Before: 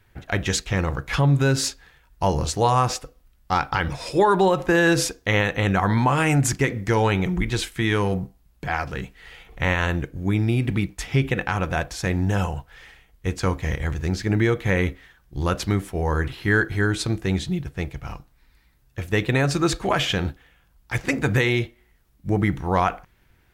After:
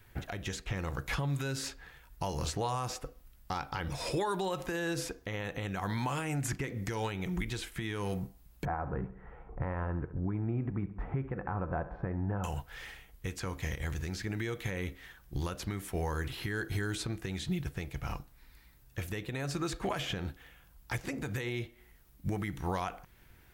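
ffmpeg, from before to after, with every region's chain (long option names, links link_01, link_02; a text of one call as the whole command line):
ffmpeg -i in.wav -filter_complex "[0:a]asettb=1/sr,asplit=3[link_01][link_02][link_03];[link_01]atrim=end=8.654[link_04];[link_02]atrim=start=8.65:end=12.44,asetpts=PTS-STARTPTS,afade=type=in:duration=0.004:curve=qsin,afade=type=out:start_time=3.786:duration=0.004:curve=qsin,lowpass=frequency=1200:width=0.5412,lowpass=frequency=1200:width=1.3066,aecho=1:1:68|136|204|272:0.141|0.0692|0.0339|0.0166,atrim=end_sample=167139[link_05];[link_03]atrim=start=12.436[link_06];[link_04][link_05]acrossfade=duration=0.004:curve1=hsin:curve2=qsin[link_07];[link_07][link_06]acrossfade=duration=0.004:curve1=qsin:curve2=hsin,highshelf=frequency=11000:gain=9.5,acrossover=split=1200|2700[link_08][link_09][link_10];[link_08]acompressor=threshold=-29dB:ratio=4[link_11];[link_09]acompressor=threshold=-40dB:ratio=4[link_12];[link_10]acompressor=threshold=-40dB:ratio=4[link_13];[link_11][link_12][link_13]amix=inputs=3:normalize=0,alimiter=limit=-23.5dB:level=0:latency=1:release=300" out.wav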